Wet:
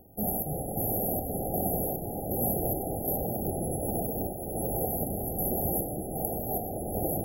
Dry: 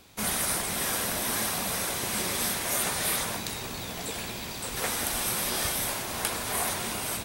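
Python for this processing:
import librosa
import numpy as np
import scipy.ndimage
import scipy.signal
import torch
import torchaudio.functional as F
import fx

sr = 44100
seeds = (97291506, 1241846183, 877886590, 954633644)

y = fx.chopper(x, sr, hz=1.3, depth_pct=65, duty_pct=55)
y = fx.echo_pitch(y, sr, ms=201, semitones=-6, count=3, db_per_echo=-3.0)
y = fx.brickwall_bandstop(y, sr, low_hz=830.0, high_hz=11000.0)
y = fx.band_squash(y, sr, depth_pct=70, at=(2.65, 5.29))
y = F.gain(torch.from_numpy(y), 3.5).numpy()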